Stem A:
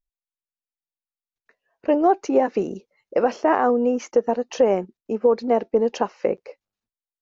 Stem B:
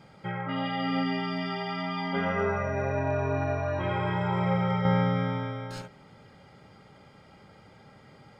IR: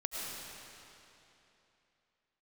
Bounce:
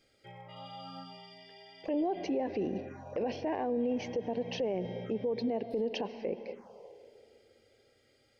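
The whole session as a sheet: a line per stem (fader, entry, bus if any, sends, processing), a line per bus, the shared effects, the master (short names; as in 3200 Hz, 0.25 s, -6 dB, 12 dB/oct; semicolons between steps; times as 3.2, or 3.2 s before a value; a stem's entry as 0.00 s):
-2.5 dB, 0.00 s, send -19 dB, dry
-13.5 dB, 0.00 s, send -21.5 dB, high shelf 2900 Hz +10.5 dB; auto duck -7 dB, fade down 0.60 s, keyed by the first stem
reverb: on, RT60 3.1 s, pre-delay 65 ms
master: envelope phaser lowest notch 160 Hz, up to 1300 Hz, full sweep at -28.5 dBFS; limiter -25 dBFS, peak gain reduction 14 dB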